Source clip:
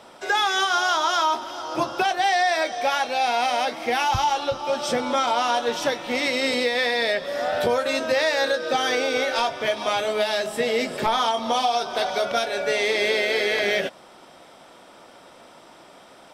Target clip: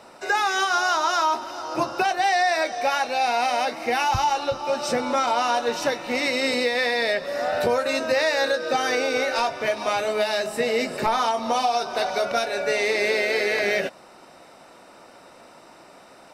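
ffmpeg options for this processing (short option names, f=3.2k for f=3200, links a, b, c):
-af "asuperstop=centerf=3300:order=4:qfactor=6.9"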